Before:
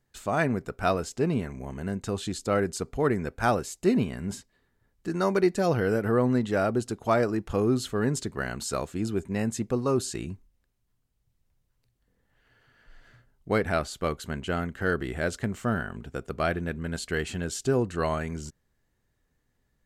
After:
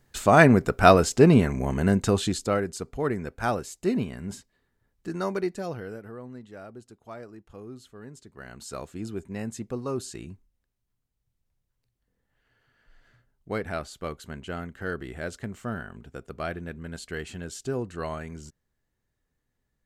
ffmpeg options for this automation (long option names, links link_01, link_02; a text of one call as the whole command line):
ffmpeg -i in.wav -af "volume=22.5dB,afade=type=out:start_time=1.92:duration=0.7:silence=0.237137,afade=type=out:start_time=5.1:duration=0.71:silence=0.354813,afade=type=out:start_time=5.81:duration=0.35:silence=0.473151,afade=type=in:start_time=8.24:duration=0.63:silence=0.237137" out.wav